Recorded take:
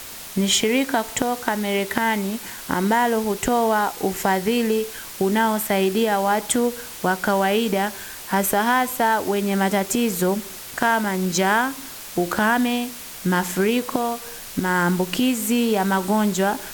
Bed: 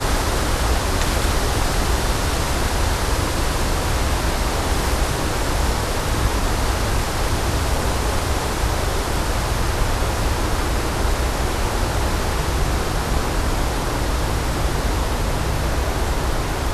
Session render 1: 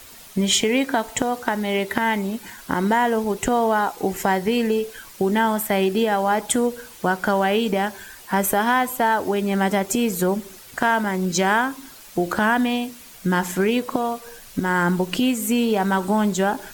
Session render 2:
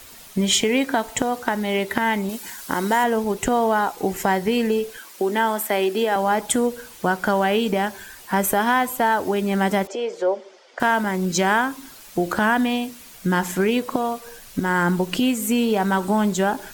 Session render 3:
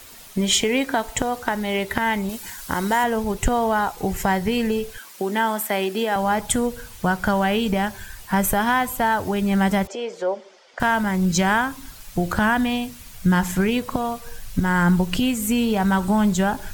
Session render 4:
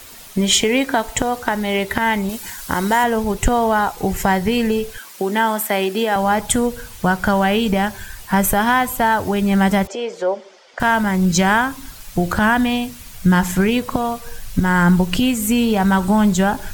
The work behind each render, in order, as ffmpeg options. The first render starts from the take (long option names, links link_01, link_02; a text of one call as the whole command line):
ffmpeg -i in.wav -af "afftdn=noise_reduction=9:noise_floor=-37" out.wav
ffmpeg -i in.wav -filter_complex "[0:a]asettb=1/sr,asplit=3[link_01][link_02][link_03];[link_01]atrim=end=2.294[link_04];[link_02]atrim=start=2.29:end=3.04,asetpts=PTS-STARTPTS,afade=type=in:duration=0.004:curve=qsin,afade=type=out:start_time=0.746:duration=0.004:curve=qsin,bass=frequency=250:gain=-6,treble=frequency=4000:gain=7[link_05];[link_03]atrim=start=3.036[link_06];[link_04][link_05]acrossfade=duration=0.004:curve1=hsin:curve2=qsin[link_07];[link_07][link_06]acrossfade=duration=0.004:curve1=qsin:curve2=hsin,asettb=1/sr,asplit=3[link_08][link_09][link_10];[link_08]atrim=end=4.974[link_11];[link_09]atrim=start=4.97:end=6.16,asetpts=PTS-STARTPTS,afade=type=in:duration=0.004:curve=qsin,afade=type=out:start_time=1.186:duration=0.004:curve=qsin,highpass=frequency=250:width=0.5412,highpass=frequency=250:width=1.3066[link_12];[link_10]atrim=start=6.156[link_13];[link_11][link_12]acrossfade=duration=0.004:curve1=hsin:curve2=qsin[link_14];[link_14][link_13]acrossfade=duration=0.004:curve1=qsin:curve2=hsin,asettb=1/sr,asplit=3[link_15][link_16][link_17];[link_15]atrim=end=9.874[link_18];[link_16]atrim=start=9.87:end=10.8,asetpts=PTS-STARTPTS,afade=type=in:duration=0.004:curve=qsin,afade=type=out:start_time=0.926:duration=0.004:curve=qsin,highpass=frequency=390:width=0.5412,highpass=frequency=390:width=1.3066,equalizer=frequency=560:width_type=q:width=4:gain=7,equalizer=frequency=1200:width_type=q:width=4:gain=-5,equalizer=frequency=1700:width_type=q:width=4:gain=-5,equalizer=frequency=2600:width_type=q:width=4:gain=-7,equalizer=frequency=4000:width_type=q:width=4:gain=-9,lowpass=frequency=4700:width=0.5412,lowpass=frequency=4700:width=1.3066[link_19];[link_17]atrim=start=10.796[link_20];[link_18][link_19]acrossfade=duration=0.004:curve1=hsin:curve2=qsin[link_21];[link_21][link_20]acrossfade=duration=0.004:curve1=qsin:curve2=hsin" out.wav
ffmpeg -i in.wav -af "asubboost=boost=8:cutoff=110" out.wav
ffmpeg -i in.wav -af "volume=4dB,alimiter=limit=-3dB:level=0:latency=1" out.wav